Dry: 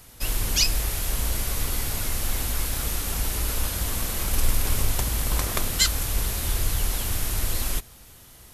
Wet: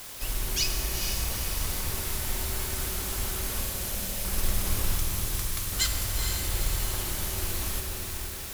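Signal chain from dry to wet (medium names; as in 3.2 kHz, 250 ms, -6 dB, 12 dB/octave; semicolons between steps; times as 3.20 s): short-mantissa float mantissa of 2-bit; 3.61–4.25 s: static phaser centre 320 Hz, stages 6; word length cut 6-bit, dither triangular; 4.98–5.72 s: amplifier tone stack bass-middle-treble 10-0-10; echo that smears into a reverb 463 ms, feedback 49%, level -5.5 dB; reverberation RT60 3.5 s, pre-delay 3 ms, DRR 3.5 dB; trim -6.5 dB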